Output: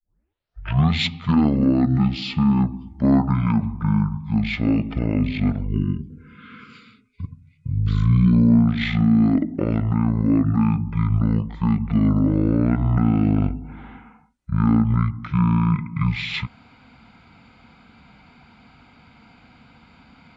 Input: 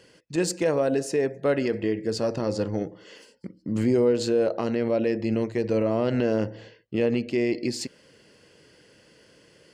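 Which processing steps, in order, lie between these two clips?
tape start-up on the opening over 0.44 s; wide varispeed 0.478×; spectral selection erased 5.68–8.33 s, 500–1000 Hz; trim +5.5 dB

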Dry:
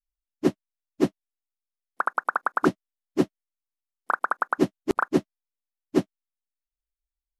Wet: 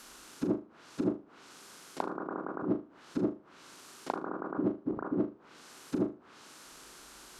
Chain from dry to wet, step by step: spectral levelling over time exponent 0.6; in parallel at -0.5 dB: peak limiter -17.5 dBFS, peak gain reduction 10.5 dB; on the sum: treble shelf 3.1 kHz +10 dB; compressor with a negative ratio -26 dBFS, ratio -1; high-pass 190 Hz 6 dB/octave; low-pass that closes with the level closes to 490 Hz, closed at -31 dBFS; on a send: flutter echo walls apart 6.6 m, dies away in 0.29 s

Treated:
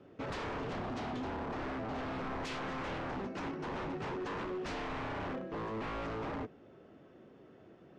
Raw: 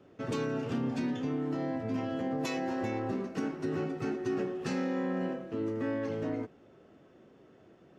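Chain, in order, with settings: wavefolder -34.5 dBFS; distance through air 98 m; trim +1 dB

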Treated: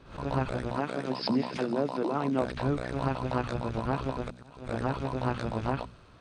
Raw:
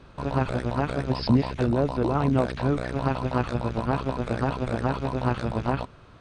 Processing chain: 0.71–2.42 s: high-pass 170 Hz 24 dB/octave; 4.28–4.69 s: slow attack 712 ms; hum notches 60/120/180/240 Hz; feedback echo behind a high-pass 91 ms, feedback 79%, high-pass 4.2 kHz, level -14 dB; swell ahead of each attack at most 120 dB/s; trim -4.5 dB

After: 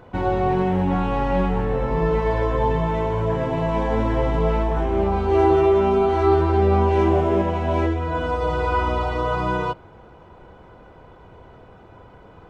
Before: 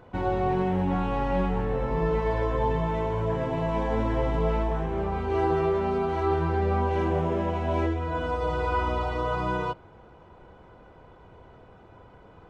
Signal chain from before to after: 4.75–7.42 s: doubling 15 ms -3 dB; trim +5 dB

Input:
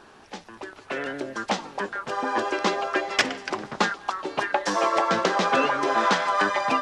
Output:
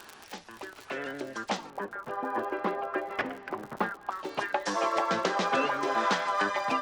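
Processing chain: 1.70–4.12 s: low-pass 1.6 kHz 12 dB/octave; crackle 69 per s -34 dBFS; tape noise reduction on one side only encoder only; trim -5.5 dB

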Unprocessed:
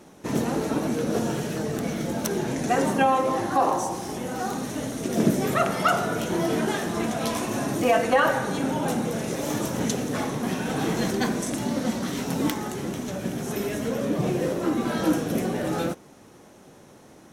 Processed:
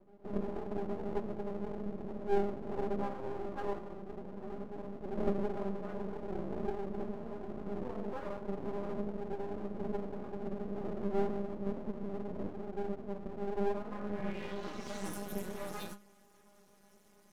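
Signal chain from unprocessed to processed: inharmonic resonator 200 Hz, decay 0.23 s, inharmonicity 0.002; low-pass sweep 410 Hz -> 13 kHz, 13.48–15.24 s; half-wave rectifier; trim +1 dB

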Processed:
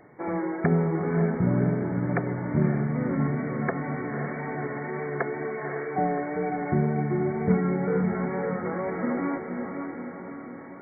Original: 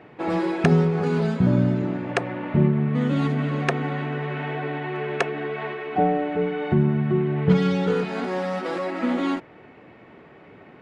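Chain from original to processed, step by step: brick-wall FIR low-pass 2.3 kHz; wow and flutter 34 cents; echo that smears into a reverb 558 ms, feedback 57%, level -5 dB; trim -5 dB

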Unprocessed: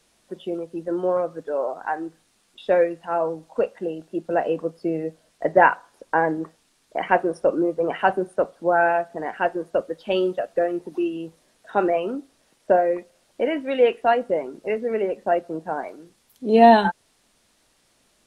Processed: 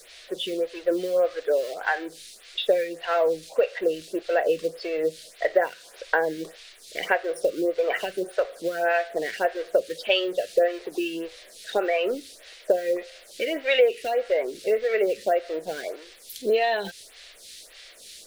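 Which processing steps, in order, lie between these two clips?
companding laws mixed up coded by mu; treble shelf 3.8 kHz +7 dB; band-stop 870 Hz, Q 12; compression 10:1, threshold -21 dBFS, peak gain reduction 14.5 dB; graphic EQ 125/250/500/1000/2000/4000 Hz -11/-12/+7/-9/+7/+9 dB; lamp-driven phase shifter 1.7 Hz; trim +4.5 dB

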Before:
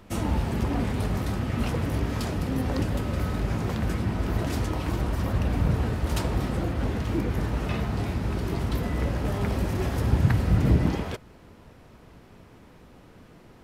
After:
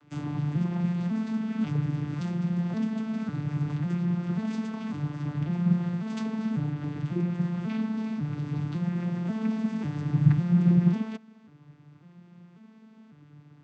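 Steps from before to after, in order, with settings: vocoder on a broken chord minor triad, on D3, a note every 546 ms; peaking EQ 520 Hz -11.5 dB 1.6 oct; trim +4 dB

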